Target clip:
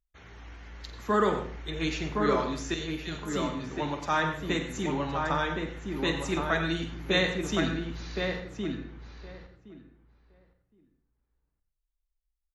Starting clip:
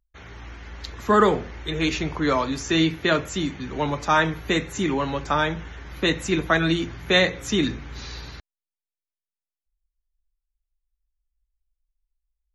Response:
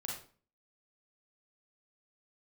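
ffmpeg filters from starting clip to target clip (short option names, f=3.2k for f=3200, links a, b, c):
-filter_complex "[0:a]asettb=1/sr,asplit=3[a][b][c];[a]atrim=end=2.744[d];[b]atrim=start=2.74:end=3.33,asetpts=PTS-STARTPTS,afade=t=in:d=0.004:c=qsin,afade=t=out:st=0.586:d=0.004:c=qsin,aderivative[e];[c]atrim=start=3.326[f];[d][e]acrossfade=d=0.004:c1=hsin:c2=qsin[g];[g][f]acrossfade=d=0.004:c1=qsin:c2=hsin,asplit=2[h][i];[i]adelay=1066,lowpass=f=1.6k:p=1,volume=-3dB,asplit=2[j][k];[k]adelay=1066,lowpass=f=1.6k:p=1,volume=0.16,asplit=2[l][m];[m]adelay=1066,lowpass=f=1.6k:p=1,volume=0.16[n];[h][j][l][n]amix=inputs=4:normalize=0,asplit=2[o][p];[1:a]atrim=start_sample=2205,adelay=48[q];[p][q]afir=irnorm=-1:irlink=0,volume=-7dB[r];[o][r]amix=inputs=2:normalize=0,volume=-8dB"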